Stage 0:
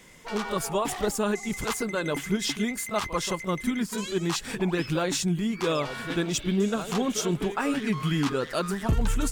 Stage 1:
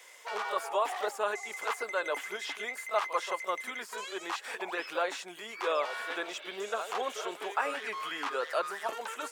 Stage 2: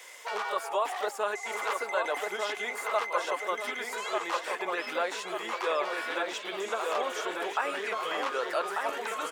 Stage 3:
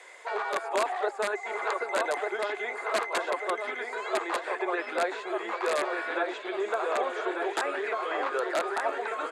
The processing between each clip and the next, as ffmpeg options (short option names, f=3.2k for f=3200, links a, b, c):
-filter_complex "[0:a]acrossover=split=2600[a][b];[b]acompressor=threshold=-46dB:ratio=4:attack=1:release=60[c];[a][c]amix=inputs=2:normalize=0,highpass=f=530:w=0.5412,highpass=f=530:w=1.3066"
-filter_complex "[0:a]asplit=2[a][b];[b]adelay=1193,lowpass=f=2.7k:p=1,volume=-3.5dB,asplit=2[c][d];[d]adelay=1193,lowpass=f=2.7k:p=1,volume=0.5,asplit=2[e][f];[f]adelay=1193,lowpass=f=2.7k:p=1,volume=0.5,asplit=2[g][h];[h]adelay=1193,lowpass=f=2.7k:p=1,volume=0.5,asplit=2[i][j];[j]adelay=1193,lowpass=f=2.7k:p=1,volume=0.5,asplit=2[k][l];[l]adelay=1193,lowpass=f=2.7k:p=1,volume=0.5,asplit=2[m][n];[n]adelay=1193,lowpass=f=2.7k:p=1,volume=0.5[o];[a][c][e][g][i][k][m][o]amix=inputs=8:normalize=0,asplit=2[p][q];[q]acompressor=threshold=-40dB:ratio=6,volume=1.5dB[r];[p][r]amix=inputs=2:normalize=0,volume=-1.5dB"
-filter_complex "[0:a]acrossover=split=4400[a][b];[b]acompressor=threshold=-56dB:ratio=4:attack=1:release=60[c];[a][c]amix=inputs=2:normalize=0,aeval=exprs='(mod(10*val(0)+1,2)-1)/10':c=same,highpass=f=270:w=0.5412,highpass=f=270:w=1.3066,equalizer=f=370:t=q:w=4:g=7,equalizer=f=700:t=q:w=4:g=5,equalizer=f=1.6k:t=q:w=4:g=3,equalizer=f=3k:t=q:w=4:g=-7,equalizer=f=5.6k:t=q:w=4:g=-10,lowpass=f=9.3k:w=0.5412,lowpass=f=9.3k:w=1.3066"